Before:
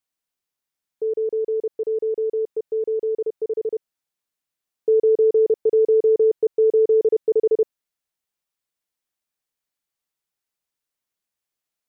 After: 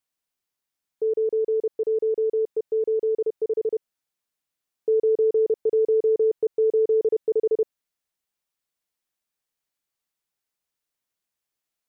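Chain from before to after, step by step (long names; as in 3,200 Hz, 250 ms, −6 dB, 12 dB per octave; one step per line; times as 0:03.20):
brickwall limiter −16 dBFS, peak gain reduction 4 dB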